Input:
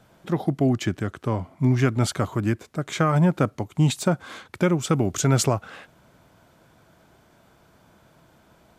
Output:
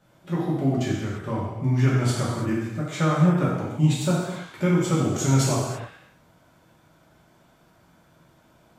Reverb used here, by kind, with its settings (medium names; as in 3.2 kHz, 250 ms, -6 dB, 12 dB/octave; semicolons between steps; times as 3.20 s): gated-style reverb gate 370 ms falling, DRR -7.5 dB; trim -9.5 dB